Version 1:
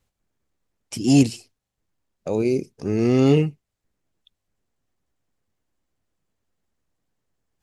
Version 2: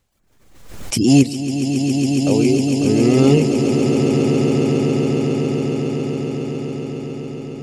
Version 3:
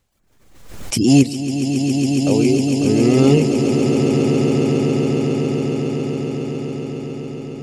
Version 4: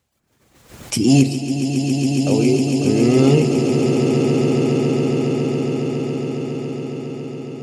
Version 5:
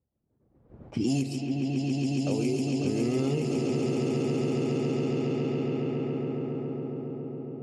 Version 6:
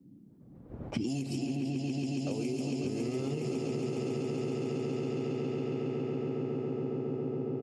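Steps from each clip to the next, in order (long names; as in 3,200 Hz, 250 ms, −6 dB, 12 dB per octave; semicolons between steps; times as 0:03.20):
reverb reduction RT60 0.57 s; echo that builds up and dies away 138 ms, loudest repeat 8, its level −8.5 dB; background raised ahead of every attack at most 59 dB per second; level +4 dB
no processing that can be heard
high-pass filter 75 Hz; convolution reverb RT60 1.9 s, pre-delay 7 ms, DRR 9 dB; level −1 dB
low-pass that shuts in the quiet parts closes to 490 Hz, open at −11.5 dBFS; downward compressor, threshold −16 dBFS, peak gain reduction 8.5 dB; level −7.5 dB
repeating echo 337 ms, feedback 58%, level −9.5 dB; downward compressor 12 to 1, threshold −36 dBFS, peak gain reduction 14.5 dB; noise in a band 120–300 Hz −62 dBFS; level +6 dB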